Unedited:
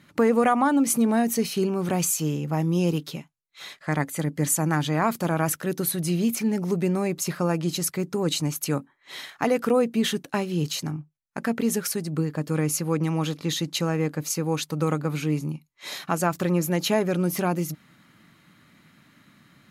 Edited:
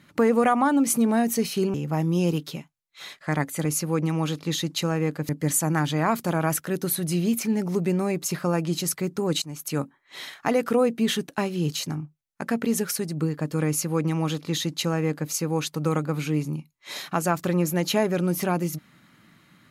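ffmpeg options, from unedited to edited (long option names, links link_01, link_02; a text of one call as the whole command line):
ffmpeg -i in.wav -filter_complex "[0:a]asplit=5[link_01][link_02][link_03][link_04][link_05];[link_01]atrim=end=1.742[link_06];[link_02]atrim=start=2.338:end=4.252[link_07];[link_03]atrim=start=12.628:end=14.272[link_08];[link_04]atrim=start=4.248:end=8.38,asetpts=PTS-STARTPTS,afade=type=out:start_time=4.128:duration=0.004:curve=hsin:silence=0.11885[link_09];[link_05]atrim=start=8.38,asetpts=PTS-STARTPTS,afade=type=in:duration=0.4:silence=0.11885[link_10];[link_06][link_07]acrossfade=duration=0.004:curve1=hsin:curve2=hsin[link_11];[link_11][link_08]acrossfade=duration=0.004:curve1=hsin:curve2=hsin[link_12];[link_09][link_10]concat=n=2:v=0:a=1[link_13];[link_12][link_13]acrossfade=duration=0.004:curve1=hsin:curve2=hsin" out.wav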